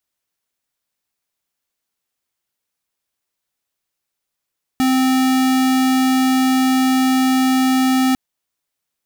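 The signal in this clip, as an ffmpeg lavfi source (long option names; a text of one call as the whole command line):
ffmpeg -f lavfi -i "aevalsrc='0.178*(2*lt(mod(260*t,1),0.5)-1)':duration=3.35:sample_rate=44100" out.wav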